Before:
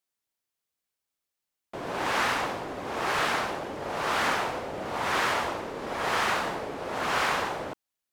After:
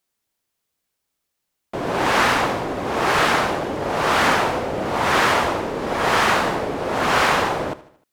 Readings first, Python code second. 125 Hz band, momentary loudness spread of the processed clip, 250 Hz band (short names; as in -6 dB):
+12.5 dB, 8 LU, +11.5 dB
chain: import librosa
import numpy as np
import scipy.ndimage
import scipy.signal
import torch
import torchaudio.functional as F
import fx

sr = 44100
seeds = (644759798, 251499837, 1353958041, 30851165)

p1 = fx.low_shelf(x, sr, hz=500.0, db=4.5)
p2 = p1 + fx.echo_feedback(p1, sr, ms=76, feedback_pct=49, wet_db=-17.5, dry=0)
y = F.gain(torch.from_numpy(p2), 8.0).numpy()